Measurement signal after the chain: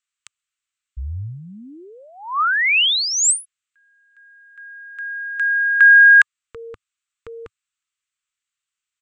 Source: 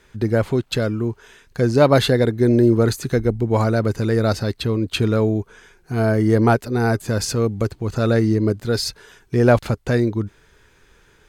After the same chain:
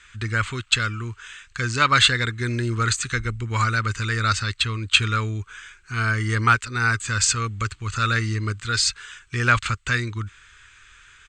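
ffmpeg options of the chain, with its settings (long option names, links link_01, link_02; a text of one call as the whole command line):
ffmpeg -i in.wav -af "firequalizer=gain_entry='entry(100,0);entry(150,-10);entry(400,-14);entry(680,-19);entry(1200,10);entry(1700,8);entry(2700,12);entry(5200,3);entry(7900,14);entry(11000,-22)':delay=0.05:min_phase=1,volume=-1.5dB" out.wav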